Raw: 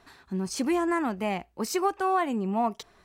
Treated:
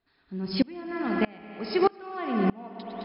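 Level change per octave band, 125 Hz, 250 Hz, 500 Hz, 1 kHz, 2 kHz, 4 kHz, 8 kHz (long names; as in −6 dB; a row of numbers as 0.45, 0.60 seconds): +2.5 dB, +0.5 dB, +0.5 dB, −4.5 dB, −1.0 dB, +1.5 dB, below −40 dB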